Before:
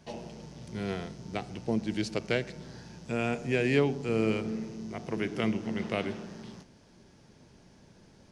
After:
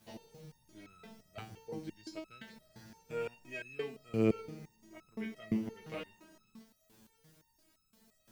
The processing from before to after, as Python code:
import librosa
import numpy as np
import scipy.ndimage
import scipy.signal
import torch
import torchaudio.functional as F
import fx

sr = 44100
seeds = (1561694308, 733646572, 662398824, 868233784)

y = fx.quant_dither(x, sr, seeds[0], bits=10, dither='triangular')
y = fx.resonator_held(y, sr, hz=5.8, low_hz=110.0, high_hz=1300.0)
y = y * librosa.db_to_amplitude(2.0)